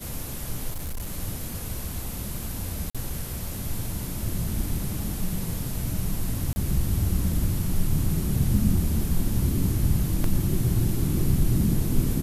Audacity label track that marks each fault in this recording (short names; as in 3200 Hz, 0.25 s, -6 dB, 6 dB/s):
0.710000	1.130000	clipped -27.5 dBFS
2.900000	2.950000	gap 46 ms
6.530000	6.560000	gap 30 ms
10.240000	10.240000	gap 2.3 ms